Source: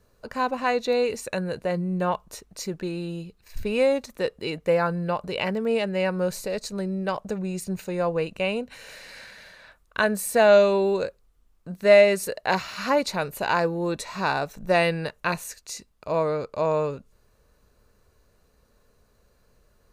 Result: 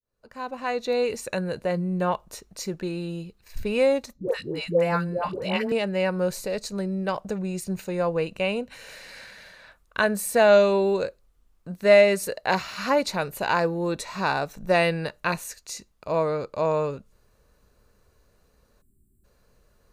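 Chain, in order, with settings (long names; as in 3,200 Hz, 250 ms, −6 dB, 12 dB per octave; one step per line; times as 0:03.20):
fade in at the beginning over 1.15 s
0:04.13–0:05.72: all-pass dispersion highs, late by 144 ms, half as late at 590 Hz
0:18.81–0:19.24: gain on a spectral selection 400–7,200 Hz −30 dB
on a send: convolution reverb RT60 0.25 s, pre-delay 3 ms, DRR 24 dB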